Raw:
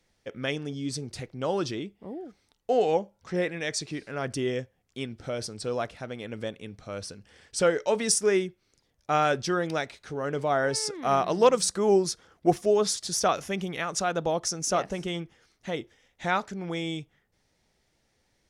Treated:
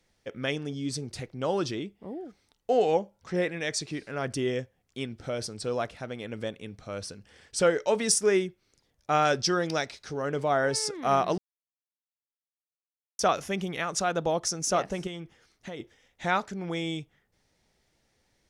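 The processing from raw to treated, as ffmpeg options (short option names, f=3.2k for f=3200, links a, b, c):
-filter_complex "[0:a]asettb=1/sr,asplit=3[a][b][c];[a]atrim=end=9.254[d];[b]atrim=start=9.25:end=10.22,asetpts=PTS-STARTPTS,afade=t=in:d=0.004:c=qsin,afade=t=out:st=0.966:d=0.004:c=qsin,equalizer=f=5.2k:t=o:w=0.59:g=9.5[e];[c]atrim=start=10.216[f];[d][e]acrossfade=d=0.004:c1=hsin:c2=qsin[g];[g][f]acrossfade=d=0.004:c1=qsin:c2=hsin,asettb=1/sr,asplit=3[h][i][j];[h]atrim=end=15.074[k];[i]atrim=start=15.07:end=15.8,asetpts=PTS-STARTPTS,afade=t=in:d=0.004:c=qsin,afade=t=out:st=0.726:d=0.004:c=qsin,acompressor=threshold=-34dB:ratio=6:attack=3.2:release=140:knee=1:detection=peak[l];[j]atrim=start=15.796[m];[k][l]acrossfade=d=0.004:c1=hsin:c2=qsin[n];[n][m]acrossfade=d=0.004:c1=qsin:c2=hsin,asplit=3[o][p][q];[o]atrim=end=11.38,asetpts=PTS-STARTPTS,afade=t=out:st=11.376:d=0.004:c=hsin[r];[p]atrim=start=11.38:end=13.19,asetpts=PTS-STARTPTS,volume=0[s];[q]atrim=start=13.19,asetpts=PTS-STARTPTS,afade=t=in:d=0.004:c=hsin[t];[r][s][t]concat=n=3:v=0:a=1"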